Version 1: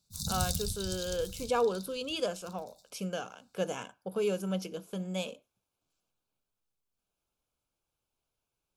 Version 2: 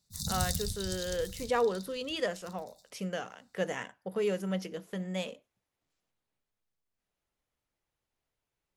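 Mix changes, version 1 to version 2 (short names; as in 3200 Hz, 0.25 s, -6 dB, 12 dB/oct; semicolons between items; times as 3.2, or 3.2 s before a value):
speech: add high shelf 6800 Hz -6 dB; master: remove Butterworth band-stop 1900 Hz, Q 3.3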